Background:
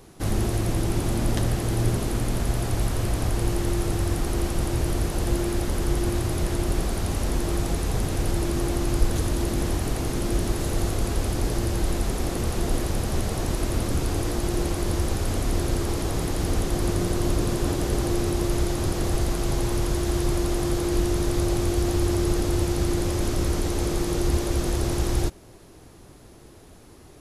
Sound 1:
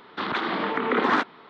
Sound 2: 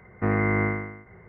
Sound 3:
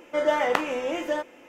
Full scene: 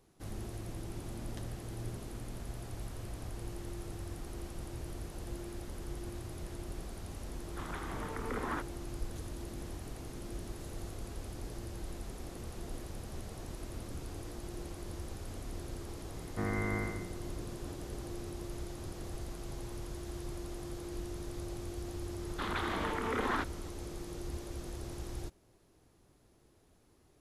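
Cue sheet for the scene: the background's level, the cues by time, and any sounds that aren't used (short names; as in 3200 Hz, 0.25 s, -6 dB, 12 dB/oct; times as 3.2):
background -18 dB
7.39 add 1 -14.5 dB + air absorption 320 m
16.15 add 2 -11.5 dB
22.21 add 1 -9 dB + limiter -15 dBFS
not used: 3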